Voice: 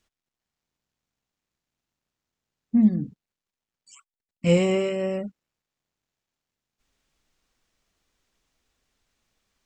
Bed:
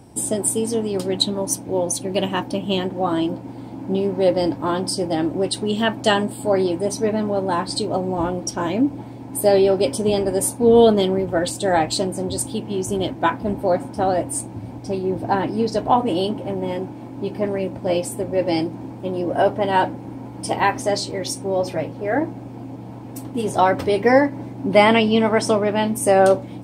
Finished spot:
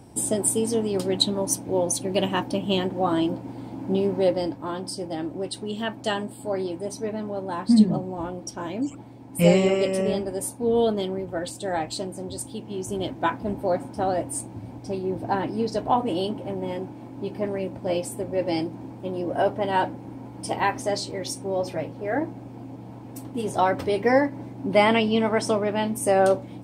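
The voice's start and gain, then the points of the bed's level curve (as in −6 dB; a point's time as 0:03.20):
4.95 s, +1.5 dB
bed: 0:04.14 −2 dB
0:04.57 −9 dB
0:12.53 −9 dB
0:13.15 −5 dB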